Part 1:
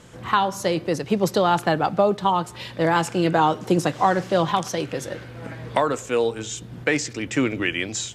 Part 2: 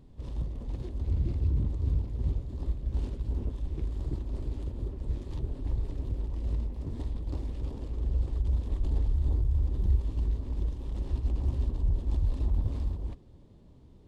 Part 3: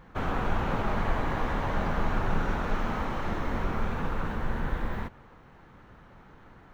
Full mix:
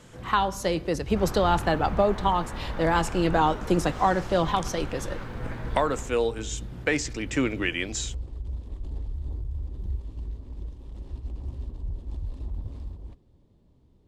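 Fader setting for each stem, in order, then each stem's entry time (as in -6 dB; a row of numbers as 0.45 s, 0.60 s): -3.5 dB, -6.0 dB, -7.5 dB; 0.00 s, 0.00 s, 1.00 s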